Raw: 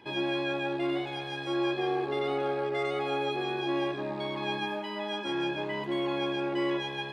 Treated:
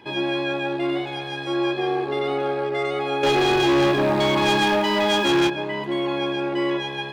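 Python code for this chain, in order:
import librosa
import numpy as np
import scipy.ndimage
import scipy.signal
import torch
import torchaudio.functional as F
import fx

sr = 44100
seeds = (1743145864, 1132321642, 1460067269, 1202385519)

y = fx.leveller(x, sr, passes=3, at=(3.23, 5.5))
y = fx.end_taper(y, sr, db_per_s=170.0)
y = y * librosa.db_to_amplitude(6.0)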